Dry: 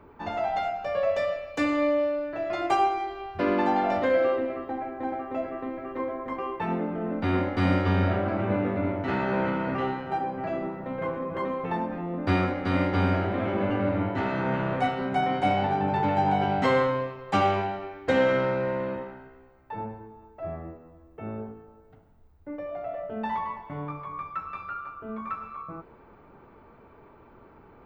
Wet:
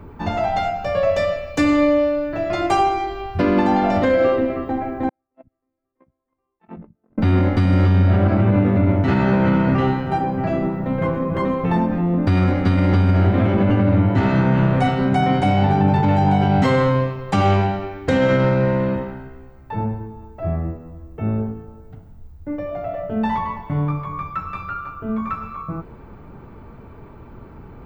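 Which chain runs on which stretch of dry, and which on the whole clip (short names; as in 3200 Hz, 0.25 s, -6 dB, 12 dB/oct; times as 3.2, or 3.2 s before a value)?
5.09–7.18 gate -25 dBFS, range -53 dB + LPF 2800 Hz + bands offset in time highs, lows 60 ms, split 190 Hz
whole clip: tone controls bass +12 dB, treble +6 dB; limiter -14.5 dBFS; gain +6.5 dB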